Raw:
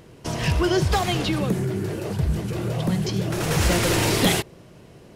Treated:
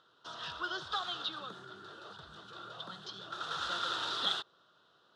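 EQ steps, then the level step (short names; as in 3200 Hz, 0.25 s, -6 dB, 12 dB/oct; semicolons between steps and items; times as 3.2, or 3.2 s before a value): double band-pass 2200 Hz, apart 1.4 oct; air absorption 59 m; 0.0 dB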